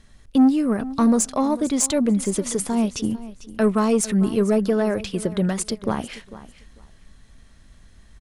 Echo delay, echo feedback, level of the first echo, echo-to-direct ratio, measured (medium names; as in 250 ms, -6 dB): 447 ms, 19%, -16.5 dB, -16.5 dB